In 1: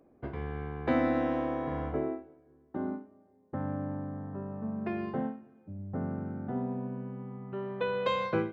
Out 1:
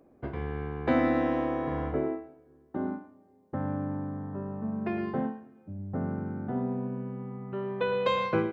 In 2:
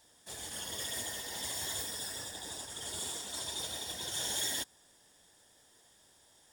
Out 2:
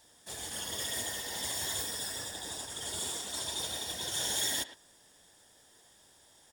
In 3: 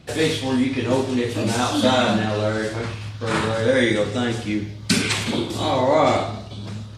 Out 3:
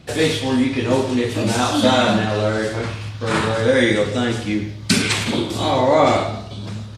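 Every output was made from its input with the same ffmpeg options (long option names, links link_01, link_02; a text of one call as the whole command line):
ffmpeg -i in.wav -filter_complex "[0:a]asplit=2[link_01][link_02];[link_02]adelay=110,highpass=300,lowpass=3400,asoftclip=type=hard:threshold=-12dB,volume=-12dB[link_03];[link_01][link_03]amix=inputs=2:normalize=0,volume=2.5dB" out.wav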